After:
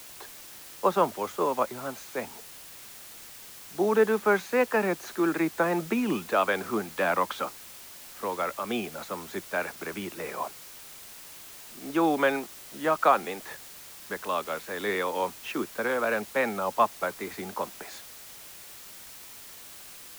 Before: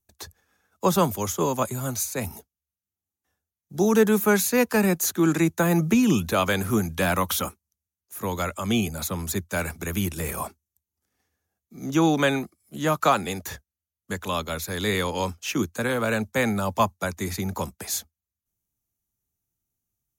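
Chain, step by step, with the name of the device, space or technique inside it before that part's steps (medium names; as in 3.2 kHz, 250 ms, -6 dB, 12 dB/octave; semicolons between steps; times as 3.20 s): wax cylinder (band-pass 380–2100 Hz; wow and flutter; white noise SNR 16 dB)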